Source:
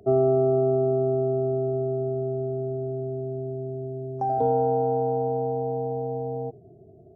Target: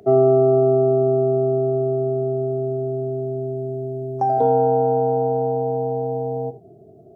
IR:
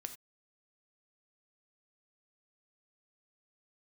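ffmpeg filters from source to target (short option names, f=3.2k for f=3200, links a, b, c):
-filter_complex "[0:a]highpass=110,asplit=2[a][b];[1:a]atrim=start_sample=2205,lowshelf=f=480:g=-11.5[c];[b][c]afir=irnorm=-1:irlink=0,volume=9.5dB[d];[a][d]amix=inputs=2:normalize=0"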